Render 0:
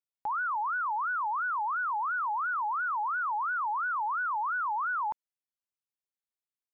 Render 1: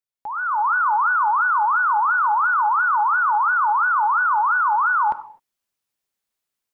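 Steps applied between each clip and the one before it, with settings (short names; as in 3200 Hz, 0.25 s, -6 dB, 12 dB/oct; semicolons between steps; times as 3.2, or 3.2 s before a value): AGC gain up to 12 dB; non-linear reverb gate 0.28 s falling, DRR 10.5 dB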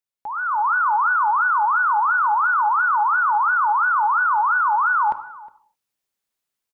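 notches 60/120 Hz; outdoor echo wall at 62 m, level -20 dB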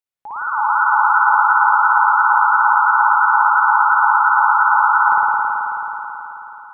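spring tank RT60 3.8 s, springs 54 ms, chirp 65 ms, DRR -7.5 dB; gain -3 dB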